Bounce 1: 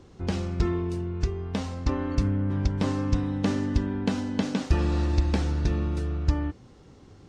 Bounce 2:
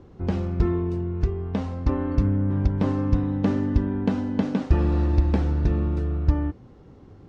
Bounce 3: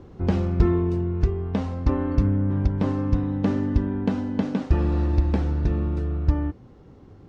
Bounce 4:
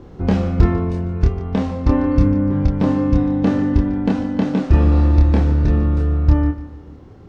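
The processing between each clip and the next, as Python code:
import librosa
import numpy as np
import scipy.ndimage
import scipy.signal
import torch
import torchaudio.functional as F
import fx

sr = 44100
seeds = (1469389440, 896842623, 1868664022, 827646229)

y1 = fx.lowpass(x, sr, hz=1100.0, slope=6)
y1 = y1 * librosa.db_to_amplitude(3.5)
y2 = fx.rider(y1, sr, range_db=10, speed_s=2.0)
y3 = fx.doubler(y2, sr, ms=27.0, db=-3)
y3 = fx.echo_feedback(y3, sr, ms=147, feedback_pct=44, wet_db=-15.5)
y3 = y3 * librosa.db_to_amplitude(4.5)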